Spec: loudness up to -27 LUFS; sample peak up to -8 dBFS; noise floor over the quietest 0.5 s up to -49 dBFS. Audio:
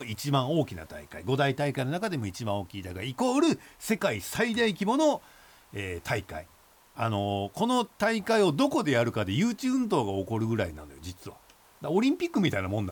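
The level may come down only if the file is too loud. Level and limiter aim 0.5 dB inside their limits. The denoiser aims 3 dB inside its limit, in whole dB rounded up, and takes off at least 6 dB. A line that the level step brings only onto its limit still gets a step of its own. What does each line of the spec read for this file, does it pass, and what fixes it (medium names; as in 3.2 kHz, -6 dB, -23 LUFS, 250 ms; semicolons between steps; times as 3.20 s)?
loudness -28.5 LUFS: pass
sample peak -13.5 dBFS: pass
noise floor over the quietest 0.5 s -59 dBFS: pass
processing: none needed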